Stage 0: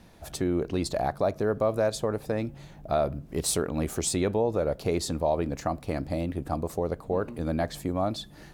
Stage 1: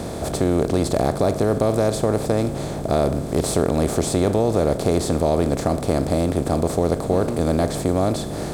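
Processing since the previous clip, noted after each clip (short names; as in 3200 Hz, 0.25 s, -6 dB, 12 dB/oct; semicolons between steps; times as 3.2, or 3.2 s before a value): per-bin compression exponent 0.4; low shelf 480 Hz +9 dB; gain -2.5 dB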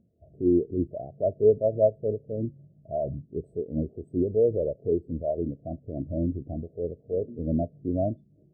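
limiter -10 dBFS, peak gain reduction 4.5 dB; spectral expander 4:1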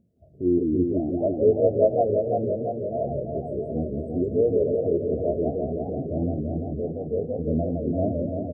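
echo 76 ms -17 dB; warbling echo 0.17 s, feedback 80%, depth 208 cents, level -4 dB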